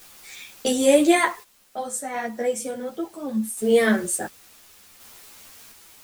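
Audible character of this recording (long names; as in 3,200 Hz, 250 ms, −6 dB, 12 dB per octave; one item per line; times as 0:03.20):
a quantiser's noise floor 8 bits, dither triangular
sample-and-hold tremolo 1.4 Hz, depth 75%
a shimmering, thickened sound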